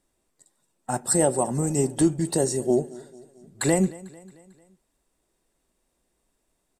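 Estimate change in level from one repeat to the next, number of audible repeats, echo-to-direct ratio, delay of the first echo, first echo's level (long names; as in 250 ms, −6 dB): −5.5 dB, 3, −19.0 dB, 223 ms, −20.5 dB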